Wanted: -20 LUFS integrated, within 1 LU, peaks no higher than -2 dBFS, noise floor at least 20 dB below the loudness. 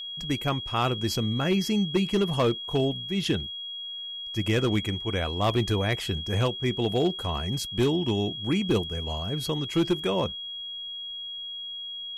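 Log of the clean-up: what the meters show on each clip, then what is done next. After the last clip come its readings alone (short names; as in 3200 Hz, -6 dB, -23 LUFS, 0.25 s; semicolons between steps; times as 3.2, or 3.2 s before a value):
clipped 0.6%; flat tops at -17.0 dBFS; steady tone 3300 Hz; tone level -34 dBFS; loudness -27.5 LUFS; peak -17.0 dBFS; loudness target -20.0 LUFS
-> clip repair -17 dBFS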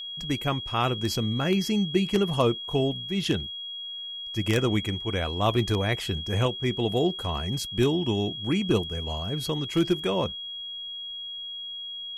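clipped 0.0%; steady tone 3300 Hz; tone level -34 dBFS
-> notch 3300 Hz, Q 30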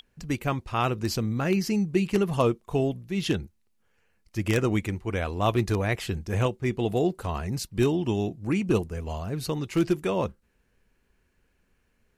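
steady tone none; loudness -27.5 LUFS; peak -8.0 dBFS; loudness target -20.0 LUFS
-> gain +7.5 dB; limiter -2 dBFS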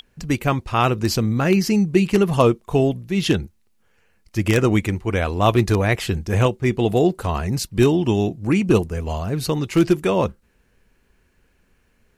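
loudness -20.0 LUFS; peak -2.0 dBFS; noise floor -62 dBFS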